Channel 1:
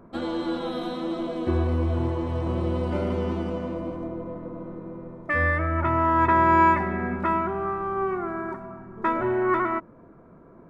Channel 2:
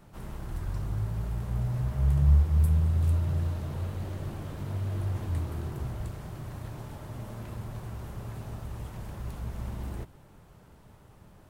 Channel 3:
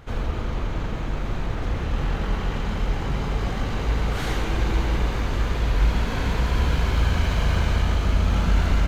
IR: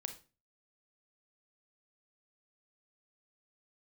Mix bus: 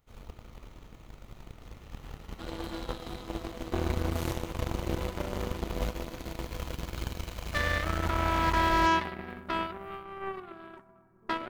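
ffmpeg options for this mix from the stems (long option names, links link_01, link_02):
-filter_complex "[0:a]bandreject=frequency=50:width_type=h:width=6,bandreject=frequency=100:width_type=h:width=6,bandreject=frequency=150:width_type=h:width=6,bandreject=frequency=200:width_type=h:width=6,bandreject=frequency=250:width_type=h:width=6,bandreject=frequency=300:width_type=h:width=6,bandreject=frequency=350:width_type=h:width=6,adelay=2250,volume=-2dB[link_01];[1:a]volume=-19dB[link_02];[2:a]bandreject=frequency=1600:width=8.5,volume=-8dB[link_03];[link_01][link_02][link_03]amix=inputs=3:normalize=0,aemphasis=mode=production:type=50fm,aeval=exprs='0.355*(cos(1*acos(clip(val(0)/0.355,-1,1)))-cos(1*PI/2))+0.0447*(cos(7*acos(clip(val(0)/0.355,-1,1)))-cos(7*PI/2))+0.00251*(cos(8*acos(clip(val(0)/0.355,-1,1)))-cos(8*PI/2))':channel_layout=same,alimiter=limit=-16dB:level=0:latency=1:release=87"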